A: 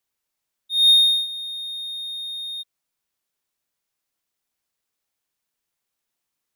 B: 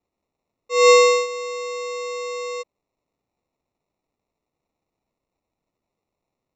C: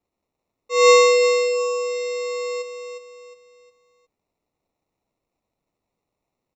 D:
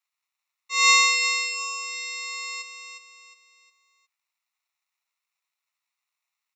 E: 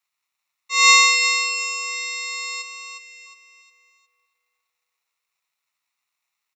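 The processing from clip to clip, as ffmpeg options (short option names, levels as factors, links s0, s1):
-af "aderivative,aresample=16000,acrusher=samples=10:mix=1:aa=0.000001,aresample=44100,volume=2.51"
-af "aecho=1:1:359|718|1077|1436:0.422|0.156|0.0577|0.0214"
-af "highpass=f=1300:w=0.5412,highpass=f=1300:w=1.3066,volume=1.41"
-filter_complex "[0:a]asplit=2[s0][s1];[s1]adelay=639,lowpass=f=950:p=1,volume=0.251,asplit=2[s2][s3];[s3]adelay=639,lowpass=f=950:p=1,volume=0.3,asplit=2[s4][s5];[s5]adelay=639,lowpass=f=950:p=1,volume=0.3[s6];[s0][s2][s4][s6]amix=inputs=4:normalize=0,volume=1.68"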